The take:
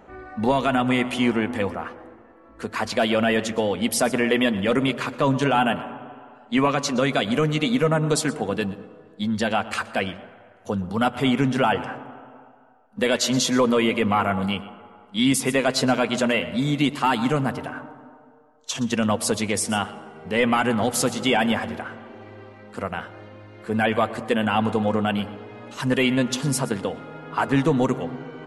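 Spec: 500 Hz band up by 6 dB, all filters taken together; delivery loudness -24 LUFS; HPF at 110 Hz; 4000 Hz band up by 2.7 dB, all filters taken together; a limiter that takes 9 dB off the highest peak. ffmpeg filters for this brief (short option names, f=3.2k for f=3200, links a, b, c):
-af "highpass=110,equalizer=f=500:t=o:g=7,equalizer=f=4k:t=o:g=3.5,volume=-0.5dB,alimiter=limit=-13.5dB:level=0:latency=1"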